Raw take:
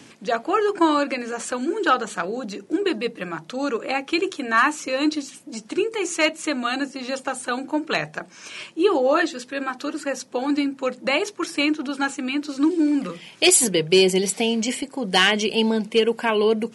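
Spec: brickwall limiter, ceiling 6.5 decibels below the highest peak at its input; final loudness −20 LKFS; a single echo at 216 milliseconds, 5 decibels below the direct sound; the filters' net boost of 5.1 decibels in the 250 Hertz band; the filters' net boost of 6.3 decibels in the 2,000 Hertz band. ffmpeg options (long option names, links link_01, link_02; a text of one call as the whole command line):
ffmpeg -i in.wav -af "equalizer=frequency=250:width_type=o:gain=6.5,equalizer=frequency=2000:width_type=o:gain=8,alimiter=limit=-7dB:level=0:latency=1,aecho=1:1:216:0.562,volume=-1.5dB" out.wav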